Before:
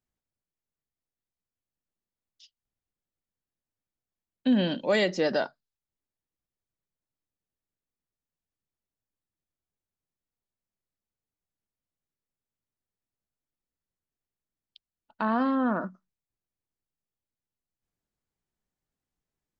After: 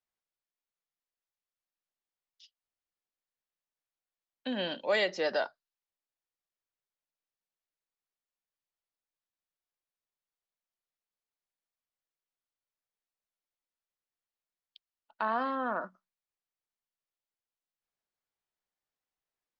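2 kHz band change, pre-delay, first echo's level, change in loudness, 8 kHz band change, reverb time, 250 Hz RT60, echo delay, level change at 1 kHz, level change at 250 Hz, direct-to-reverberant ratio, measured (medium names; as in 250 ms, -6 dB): -1.5 dB, no reverb, no echo, -5.5 dB, no reading, no reverb, no reverb, no echo, -2.0 dB, -13.5 dB, no reverb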